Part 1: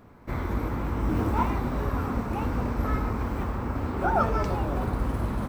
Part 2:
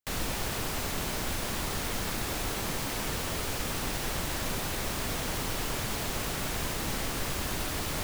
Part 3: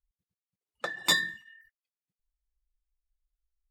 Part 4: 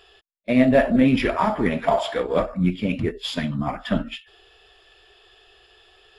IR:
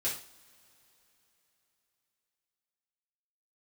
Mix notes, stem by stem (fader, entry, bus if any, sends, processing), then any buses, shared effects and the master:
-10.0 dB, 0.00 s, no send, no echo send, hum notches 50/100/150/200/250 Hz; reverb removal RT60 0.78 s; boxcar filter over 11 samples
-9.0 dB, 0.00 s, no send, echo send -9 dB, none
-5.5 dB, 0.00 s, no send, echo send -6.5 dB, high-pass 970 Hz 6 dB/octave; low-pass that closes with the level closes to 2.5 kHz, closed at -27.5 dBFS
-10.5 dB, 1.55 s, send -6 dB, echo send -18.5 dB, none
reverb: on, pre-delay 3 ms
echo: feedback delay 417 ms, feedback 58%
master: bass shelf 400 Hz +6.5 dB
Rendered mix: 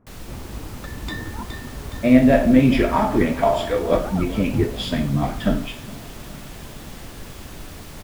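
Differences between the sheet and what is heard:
stem 1: missing hum notches 50/100/150/200/250 Hz; stem 4 -10.5 dB -> -4.0 dB

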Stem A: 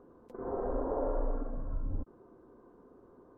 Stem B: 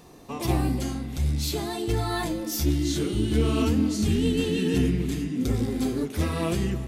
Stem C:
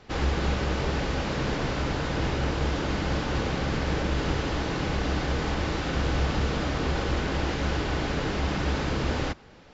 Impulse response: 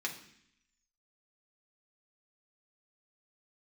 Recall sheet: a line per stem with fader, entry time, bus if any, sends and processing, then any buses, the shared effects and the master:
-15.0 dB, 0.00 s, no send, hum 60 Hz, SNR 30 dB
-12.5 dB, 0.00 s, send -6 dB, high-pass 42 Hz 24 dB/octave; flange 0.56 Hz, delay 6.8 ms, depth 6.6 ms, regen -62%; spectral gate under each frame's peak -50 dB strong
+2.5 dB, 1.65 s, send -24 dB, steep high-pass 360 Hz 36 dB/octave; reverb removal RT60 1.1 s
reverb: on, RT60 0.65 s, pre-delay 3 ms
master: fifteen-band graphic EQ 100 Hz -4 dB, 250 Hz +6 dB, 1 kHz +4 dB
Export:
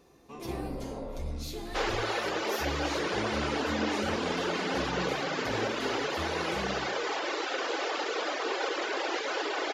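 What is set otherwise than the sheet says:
stem A -15.0 dB -> -7.5 dB; stem B: send -6 dB -> 0 dB; master: missing fifteen-band graphic EQ 100 Hz -4 dB, 250 Hz +6 dB, 1 kHz +4 dB

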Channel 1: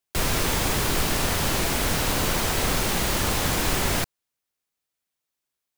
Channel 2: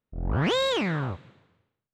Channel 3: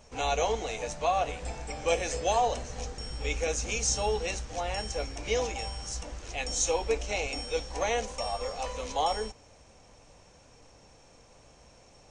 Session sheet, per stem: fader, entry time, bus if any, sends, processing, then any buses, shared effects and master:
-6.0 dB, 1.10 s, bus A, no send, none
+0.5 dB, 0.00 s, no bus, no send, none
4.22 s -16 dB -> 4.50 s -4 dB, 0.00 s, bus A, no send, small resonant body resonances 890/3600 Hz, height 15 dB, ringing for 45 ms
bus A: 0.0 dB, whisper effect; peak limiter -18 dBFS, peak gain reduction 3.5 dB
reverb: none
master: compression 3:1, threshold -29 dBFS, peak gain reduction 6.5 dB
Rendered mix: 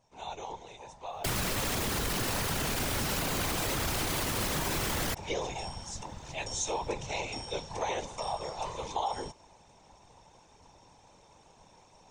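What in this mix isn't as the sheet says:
stem 1 -6.0 dB -> +3.5 dB; stem 2: muted

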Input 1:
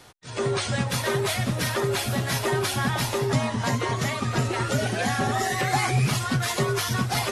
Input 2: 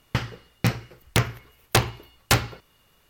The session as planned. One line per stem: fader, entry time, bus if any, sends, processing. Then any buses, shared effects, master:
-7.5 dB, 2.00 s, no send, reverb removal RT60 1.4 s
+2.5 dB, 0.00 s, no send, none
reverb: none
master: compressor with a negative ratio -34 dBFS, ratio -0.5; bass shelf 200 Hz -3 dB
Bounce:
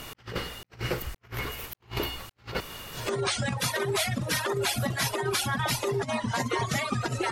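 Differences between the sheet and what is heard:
stem 1: entry 2.00 s -> 2.70 s; stem 2 +2.5 dB -> +12.0 dB

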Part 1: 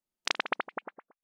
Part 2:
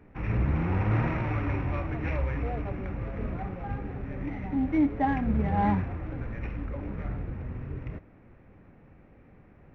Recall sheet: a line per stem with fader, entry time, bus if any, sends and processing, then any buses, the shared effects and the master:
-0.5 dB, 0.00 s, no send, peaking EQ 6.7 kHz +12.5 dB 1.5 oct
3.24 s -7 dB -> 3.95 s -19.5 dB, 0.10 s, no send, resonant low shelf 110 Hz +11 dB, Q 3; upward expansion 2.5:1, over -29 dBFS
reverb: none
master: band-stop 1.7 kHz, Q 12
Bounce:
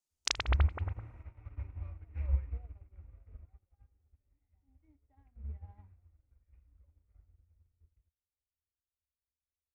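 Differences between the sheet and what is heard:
stem 1 -0.5 dB -> -7.0 dB; stem 2 -7.0 dB -> -14.0 dB

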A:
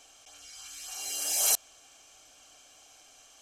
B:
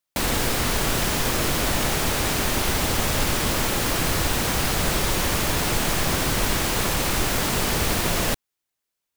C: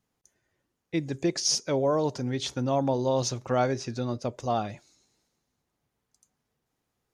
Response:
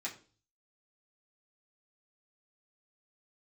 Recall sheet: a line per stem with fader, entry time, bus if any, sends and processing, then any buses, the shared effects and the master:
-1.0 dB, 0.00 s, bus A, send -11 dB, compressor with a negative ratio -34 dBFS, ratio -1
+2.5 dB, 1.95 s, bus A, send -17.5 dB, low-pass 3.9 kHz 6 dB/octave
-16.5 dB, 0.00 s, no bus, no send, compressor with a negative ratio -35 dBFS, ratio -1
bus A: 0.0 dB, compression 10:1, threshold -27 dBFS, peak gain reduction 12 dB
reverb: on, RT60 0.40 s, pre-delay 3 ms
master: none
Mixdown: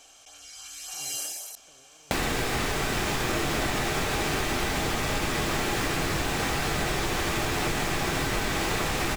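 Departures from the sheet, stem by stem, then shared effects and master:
stem A: send off; stem B +2.5 dB -> +10.5 dB; stem C -16.5 dB -> -25.5 dB

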